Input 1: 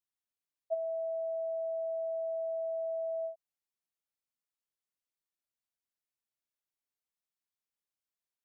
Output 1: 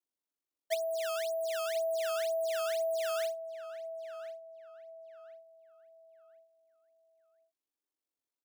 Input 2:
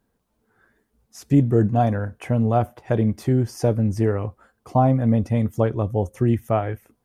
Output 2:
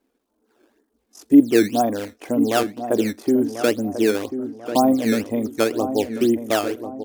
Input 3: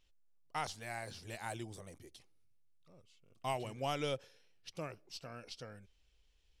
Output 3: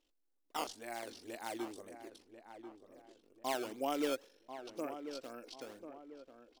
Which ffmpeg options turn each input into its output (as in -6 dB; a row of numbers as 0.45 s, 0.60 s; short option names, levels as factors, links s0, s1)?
-filter_complex "[0:a]acrossover=split=1900[s0][s1];[s0]acrusher=samples=13:mix=1:aa=0.000001:lfo=1:lforange=20.8:lforate=2[s2];[s1]aeval=exprs='val(0)*sin(2*PI*24*n/s)':c=same[s3];[s2][s3]amix=inputs=2:normalize=0,lowshelf=f=200:t=q:w=3:g=-12.5,asplit=2[s4][s5];[s5]adelay=1041,lowpass=f=1500:p=1,volume=0.335,asplit=2[s6][s7];[s7]adelay=1041,lowpass=f=1500:p=1,volume=0.41,asplit=2[s8][s9];[s9]adelay=1041,lowpass=f=1500:p=1,volume=0.41,asplit=2[s10][s11];[s11]adelay=1041,lowpass=f=1500:p=1,volume=0.41[s12];[s4][s6][s8][s10][s12]amix=inputs=5:normalize=0"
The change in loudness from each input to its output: +1.5 LU, +1.0 LU, +0.5 LU